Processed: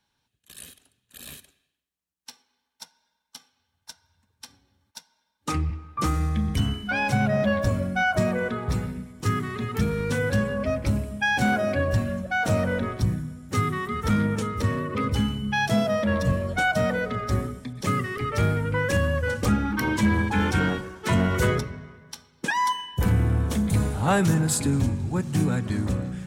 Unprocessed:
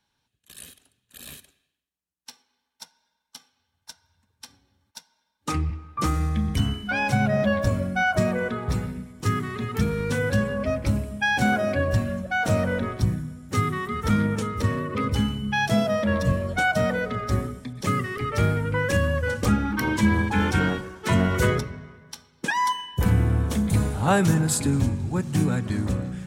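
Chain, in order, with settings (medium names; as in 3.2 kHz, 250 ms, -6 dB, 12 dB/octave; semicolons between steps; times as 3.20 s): saturation -11 dBFS, distortion -24 dB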